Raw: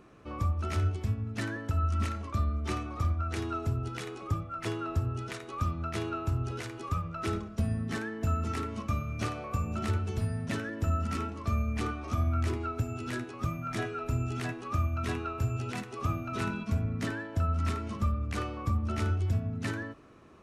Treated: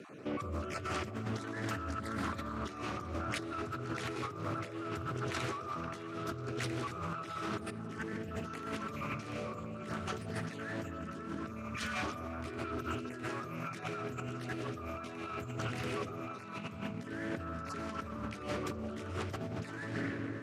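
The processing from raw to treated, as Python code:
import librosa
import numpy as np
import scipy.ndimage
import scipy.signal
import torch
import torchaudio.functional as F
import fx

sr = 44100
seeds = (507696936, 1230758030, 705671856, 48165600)

p1 = fx.spec_dropout(x, sr, seeds[0], share_pct=21)
p2 = scipy.signal.sosfilt(scipy.signal.bessel(8, 170.0, 'highpass', norm='mag', fs=sr, output='sos'), p1)
p3 = fx.rev_freeverb(p2, sr, rt60_s=2.2, hf_ratio=0.75, predelay_ms=80, drr_db=6.0)
p4 = fx.rotary(p3, sr, hz=0.65)
p5 = fx.over_compress(p4, sr, threshold_db=-46.0, ratio=-1.0)
p6 = p5 + fx.echo_stepped(p5, sr, ms=173, hz=460.0, octaves=0.7, feedback_pct=70, wet_db=-6.5, dry=0)
p7 = fx.doppler_dist(p6, sr, depth_ms=0.34)
y = p7 * 10.0 ** (5.5 / 20.0)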